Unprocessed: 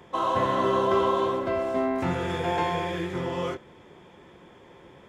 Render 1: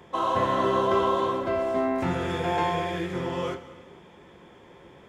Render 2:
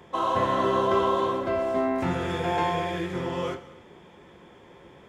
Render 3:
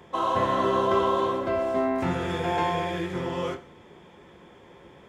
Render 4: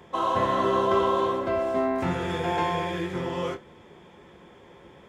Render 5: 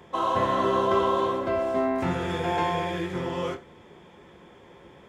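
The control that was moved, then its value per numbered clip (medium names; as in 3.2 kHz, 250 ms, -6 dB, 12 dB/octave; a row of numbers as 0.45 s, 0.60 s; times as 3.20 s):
gated-style reverb, gate: 520 ms, 350 ms, 190 ms, 80 ms, 130 ms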